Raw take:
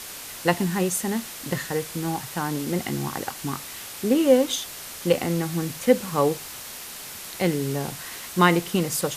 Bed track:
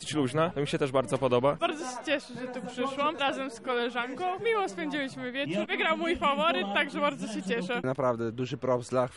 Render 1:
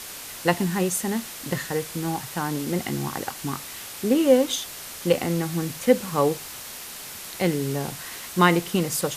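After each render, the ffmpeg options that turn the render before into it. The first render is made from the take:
-af anull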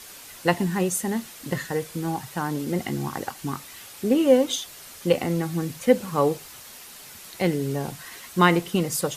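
-af "afftdn=nr=7:nf=-38"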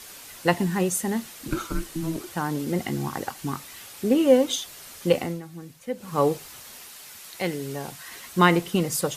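-filter_complex "[0:a]asettb=1/sr,asplit=3[a][b][c];[a]atrim=end=1.484[d];[b]atrim=start=1.48:end=2.33,asetpts=PTS-STARTPTS,afade=t=in:d=0.004:c=qsin,afade=t=out:st=0.846:d=0.004:c=qsin,afreqshift=-490[e];[c]atrim=start=2.326[f];[d][e]acrossfade=d=0.004:c1=hsin:c2=qsin[g];[g][f]acrossfade=d=0.004:c1=qsin:c2=hsin,asettb=1/sr,asplit=3[h][i][j];[h]atrim=end=6.884[k];[i]atrim=start=6.88:end=8.09,asetpts=PTS-STARTPTS,afade=t=in:d=0.004:c=qsin,afade=t=out:st=1.206:d=0.004:c=qsin,lowshelf=f=490:g=-8[l];[j]atrim=start=8.086[m];[k][l]acrossfade=d=0.004:c1=hsin:c2=qsin[n];[n][m]acrossfade=d=0.004:c1=qsin:c2=hsin,asplit=3[o][p][q];[o]atrim=end=5.41,asetpts=PTS-STARTPTS,afade=t=out:st=5.17:d=0.24:silence=0.223872[r];[p]atrim=start=5.41:end=5.97,asetpts=PTS-STARTPTS,volume=-13dB[s];[q]atrim=start=5.97,asetpts=PTS-STARTPTS,afade=t=in:d=0.24:silence=0.223872[t];[r][s][t]concat=n=3:v=0:a=1"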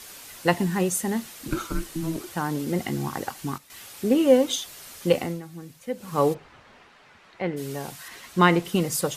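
-filter_complex "[0:a]asplit=3[a][b][c];[a]afade=t=out:st=6.33:d=0.02[d];[b]lowpass=1.9k,afade=t=in:st=6.33:d=0.02,afade=t=out:st=7.56:d=0.02[e];[c]afade=t=in:st=7.56:d=0.02[f];[d][e][f]amix=inputs=3:normalize=0,asettb=1/sr,asplit=3[g][h][i];[g]atrim=end=8.084[j];[h]atrim=start=8.08:end=8.65,asetpts=PTS-STARTPTS,afade=t=in:d=0.004:c=qsin,afade=t=out:st=0.566:d=0.004:c=qsin,highshelf=f=8.1k:g=-10[k];[i]atrim=start=8.646[l];[j][k]acrossfade=d=0.004:c1=hsin:c2=qsin[m];[m][l]acrossfade=d=0.004:c1=qsin:c2=hsin,asplit=3[n][o][p];[n]atrim=end=3.58,asetpts=PTS-STARTPTS,afade=t=out:st=3.25:d=0.33:c=log:silence=0.251189[q];[o]atrim=start=3.58:end=3.7,asetpts=PTS-STARTPTS,volume=-12dB[r];[p]atrim=start=3.7,asetpts=PTS-STARTPTS,afade=t=in:d=0.33:c=log:silence=0.251189[s];[q][r][s]concat=n=3:v=0:a=1"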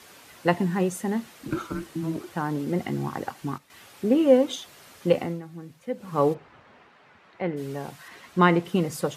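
-af "highpass=81,highshelf=f=3.7k:g=-12"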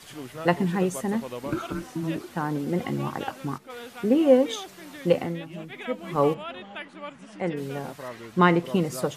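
-filter_complex "[1:a]volume=-11dB[a];[0:a][a]amix=inputs=2:normalize=0"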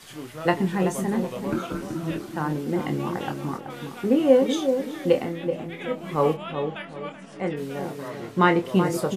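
-filter_complex "[0:a]asplit=2[a][b];[b]adelay=26,volume=-7dB[c];[a][c]amix=inputs=2:normalize=0,asplit=2[d][e];[e]adelay=379,lowpass=f=840:p=1,volume=-5.5dB,asplit=2[f][g];[g]adelay=379,lowpass=f=840:p=1,volume=0.38,asplit=2[h][i];[i]adelay=379,lowpass=f=840:p=1,volume=0.38,asplit=2[j][k];[k]adelay=379,lowpass=f=840:p=1,volume=0.38,asplit=2[l][m];[m]adelay=379,lowpass=f=840:p=1,volume=0.38[n];[d][f][h][j][l][n]amix=inputs=6:normalize=0"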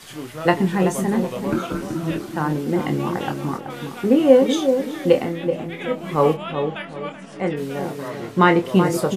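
-af "volume=4.5dB,alimiter=limit=-1dB:level=0:latency=1"

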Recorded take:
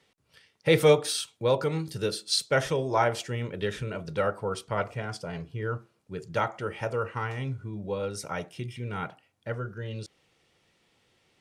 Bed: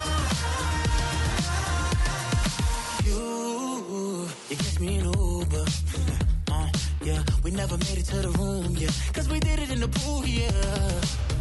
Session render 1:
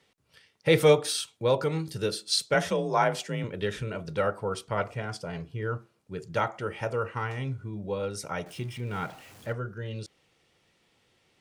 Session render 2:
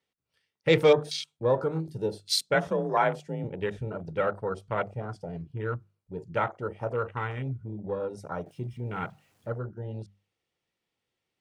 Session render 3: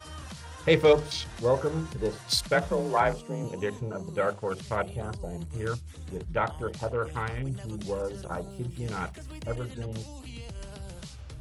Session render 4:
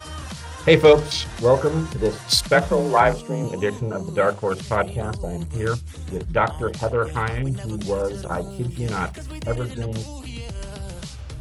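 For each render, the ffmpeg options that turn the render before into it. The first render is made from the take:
-filter_complex "[0:a]asettb=1/sr,asplit=3[a][b][c];[a]atrim=end=2.544[d];[b]atrim=start=2.54:end=3.44,asetpts=PTS-STARTPTS,afade=t=in:d=0.004:c=qsin,afade=t=out:st=0.896:d=0.004:c=qsin,afreqshift=37[e];[c]atrim=start=3.436[f];[d][e]acrossfade=d=0.004:c1=hsin:c2=qsin[g];[g][f]acrossfade=d=0.004:c1=qsin:c2=hsin,asettb=1/sr,asplit=3[h][i][j];[h]atrim=end=8.464[k];[i]atrim=start=8.46:end=9.53,asetpts=PTS-STARTPTS,afade=t=in:d=0.004:c=qsin,afade=t=out:st=1.066:d=0.004:c=qsin,aeval=exprs='val(0)+0.5*0.00531*sgn(val(0))':c=same[l];[j]atrim=start=9.526[m];[k][l]acrossfade=d=0.004:c1=hsin:c2=qsin[n];[n][m]acrossfade=d=0.004:c1=qsin:c2=hsin"
-af "afwtdn=0.0178,bandreject=f=50:t=h:w=6,bandreject=f=100:t=h:w=6,bandreject=f=150:t=h:w=6,bandreject=f=200:t=h:w=6"
-filter_complex "[1:a]volume=-16dB[a];[0:a][a]amix=inputs=2:normalize=0"
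-af "volume=8dB,alimiter=limit=-2dB:level=0:latency=1"

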